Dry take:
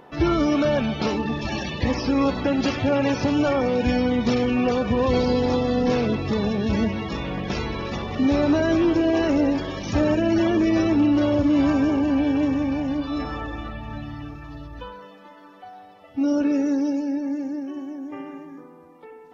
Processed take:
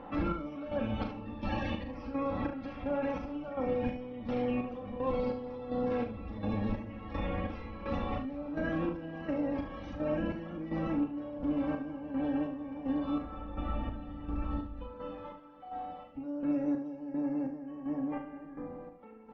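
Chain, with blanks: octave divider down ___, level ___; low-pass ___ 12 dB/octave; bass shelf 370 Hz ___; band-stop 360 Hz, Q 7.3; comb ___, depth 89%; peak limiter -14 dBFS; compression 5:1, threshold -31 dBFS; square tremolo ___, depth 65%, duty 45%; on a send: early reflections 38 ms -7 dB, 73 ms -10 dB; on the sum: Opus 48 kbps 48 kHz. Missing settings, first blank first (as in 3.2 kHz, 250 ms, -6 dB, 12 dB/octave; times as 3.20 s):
1 oct, +4 dB, 1.9 kHz, -5 dB, 3.7 ms, 1.4 Hz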